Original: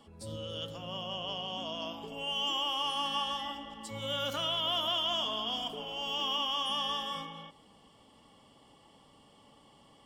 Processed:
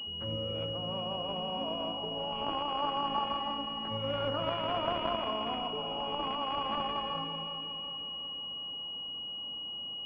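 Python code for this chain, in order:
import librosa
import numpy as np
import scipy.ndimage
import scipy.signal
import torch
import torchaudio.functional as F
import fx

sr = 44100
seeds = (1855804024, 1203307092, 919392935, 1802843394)

y = fx.echo_feedback(x, sr, ms=366, feedback_pct=56, wet_db=-9.5)
y = fx.pwm(y, sr, carrier_hz=2900.0)
y = y * librosa.db_to_amplitude(4.0)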